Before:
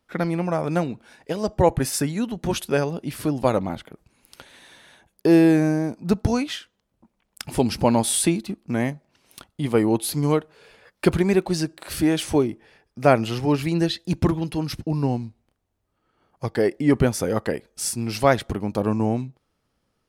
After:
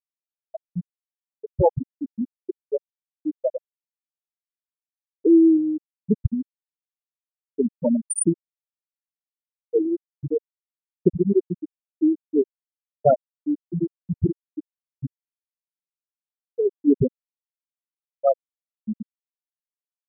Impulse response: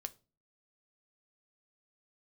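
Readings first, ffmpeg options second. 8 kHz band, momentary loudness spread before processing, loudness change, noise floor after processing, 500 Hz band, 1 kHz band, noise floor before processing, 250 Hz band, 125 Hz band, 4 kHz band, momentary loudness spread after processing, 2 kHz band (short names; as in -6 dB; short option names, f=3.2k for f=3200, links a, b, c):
-6.0 dB, 10 LU, -1.0 dB, under -85 dBFS, -2.0 dB, -6.5 dB, -75 dBFS, -1.5 dB, -7.0 dB, under -40 dB, 16 LU, under -30 dB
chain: -af "crystalizer=i=1.5:c=0,asuperstop=centerf=3500:order=12:qfactor=1.1,afftfilt=real='re*gte(hypot(re,im),0.891)':imag='im*gte(hypot(re,im),0.891)':win_size=1024:overlap=0.75,volume=1.5dB"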